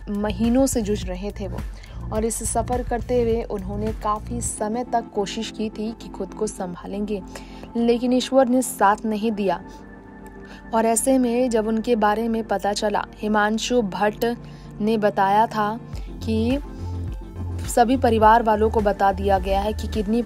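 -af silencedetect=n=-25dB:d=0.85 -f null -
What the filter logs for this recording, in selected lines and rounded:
silence_start: 9.57
silence_end: 10.73 | silence_duration: 1.16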